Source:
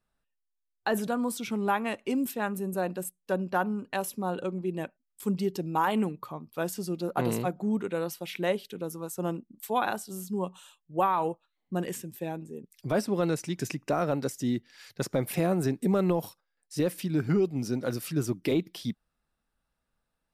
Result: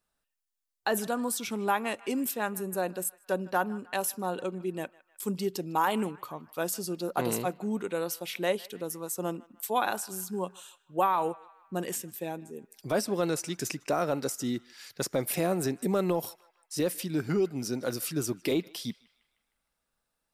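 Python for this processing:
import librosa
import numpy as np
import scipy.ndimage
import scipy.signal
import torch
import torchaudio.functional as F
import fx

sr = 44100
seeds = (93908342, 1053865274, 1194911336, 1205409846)

p1 = fx.bass_treble(x, sr, bass_db=-6, treble_db=6)
y = p1 + fx.echo_banded(p1, sr, ms=154, feedback_pct=58, hz=1700.0, wet_db=-19.5, dry=0)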